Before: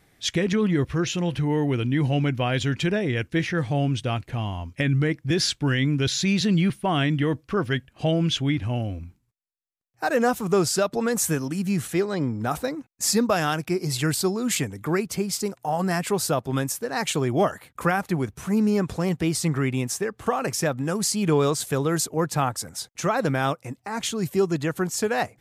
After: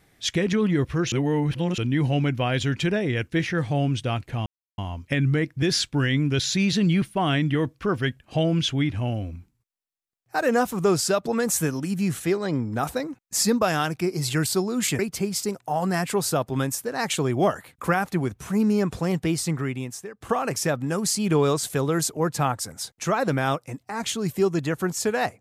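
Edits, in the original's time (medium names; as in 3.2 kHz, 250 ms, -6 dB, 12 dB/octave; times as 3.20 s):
1.12–1.78 s: reverse
4.46 s: insert silence 0.32 s
14.67–14.96 s: delete
19.23–20.18 s: fade out, to -15 dB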